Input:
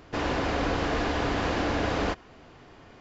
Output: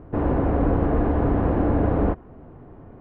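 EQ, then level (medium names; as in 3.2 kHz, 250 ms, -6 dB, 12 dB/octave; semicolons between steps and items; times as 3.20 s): low-pass 1.1 kHz 12 dB/octave; distance through air 170 m; bass shelf 450 Hz +9.5 dB; +1.5 dB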